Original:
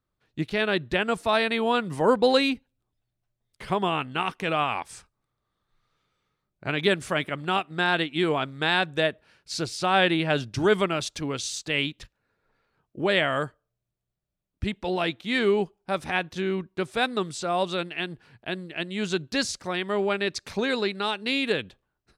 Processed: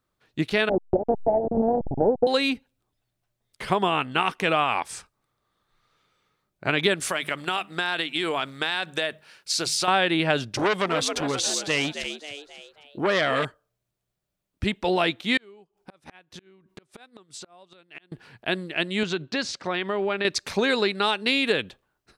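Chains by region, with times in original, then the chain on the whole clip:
0.69–2.27 s: send-on-delta sampling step -22 dBFS + steep low-pass 850 Hz 96 dB/octave + transient shaper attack +6 dB, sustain -3 dB
7.00–9.88 s: tilt EQ +2 dB/octave + hum notches 50/100/150/200 Hz + compression 10:1, threshold -27 dBFS
10.51–13.45 s: frequency-shifting echo 269 ms, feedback 44%, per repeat +74 Hz, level -12 dB + transformer saturation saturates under 2 kHz
15.37–18.12 s: inverted gate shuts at -20 dBFS, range -32 dB + compression 10:1, threshold -43 dBFS
19.03–20.25 s: compression 3:1, threshold -28 dBFS + band-pass 110–4200 Hz
whole clip: bass shelf 180 Hz -7.5 dB; compression, threshold -24 dBFS; trim +6.5 dB

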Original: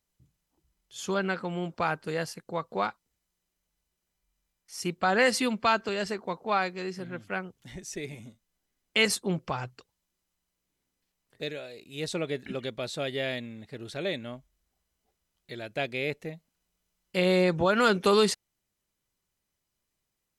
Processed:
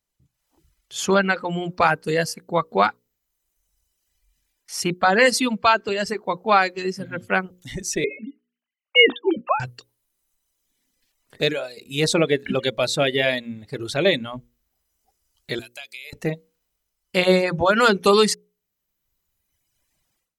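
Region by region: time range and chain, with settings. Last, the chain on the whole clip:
8.04–9.60 s: formants replaced by sine waves + hum notches 60/120/180/240/300/360/420 Hz
15.59–16.13 s: differentiator + compression 4:1, threshold -46 dBFS
whole clip: hum notches 60/120/180/240/300/360/420/480/540 Hz; level rider gain up to 15.5 dB; reverb removal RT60 1.6 s; trim -1 dB

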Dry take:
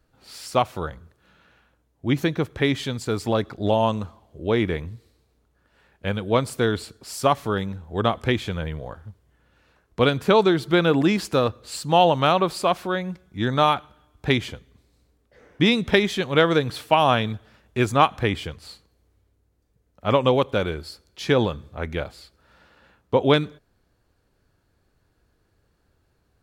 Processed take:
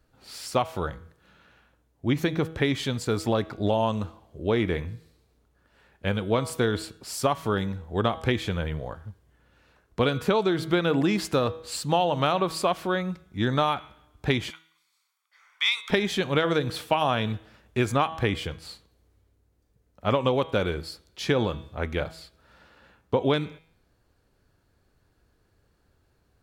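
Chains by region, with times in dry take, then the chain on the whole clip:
14.50–15.90 s: high-pass 1.1 kHz 24 dB/octave + comb 0.9 ms, depth 53%
whole clip: de-hum 161.2 Hz, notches 24; compression 6:1, threshold -19 dBFS

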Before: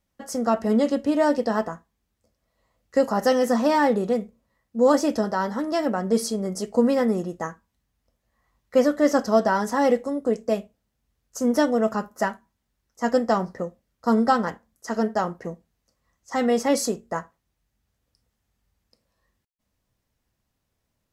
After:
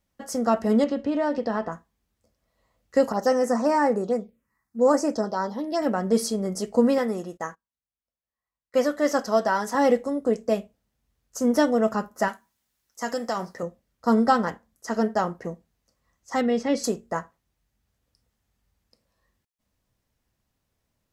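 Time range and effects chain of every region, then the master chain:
0.84–1.72 s: low-pass 4.2 kHz + compression 2.5:1, threshold -22 dBFS
3.12–5.82 s: bass shelf 160 Hz -10 dB + touch-sensitive phaser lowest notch 480 Hz, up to 3.5 kHz, full sweep at -19.5 dBFS
6.98–9.75 s: gate -44 dBFS, range -20 dB + bass shelf 380 Hz -8.5 dB
12.28–13.63 s: compression 3:1, threshold -22 dBFS + tilt EQ +2.5 dB/octave
16.41–16.84 s: low-pass 3.9 kHz + peaking EQ 1 kHz -8.5 dB 1.6 oct
whole clip: none

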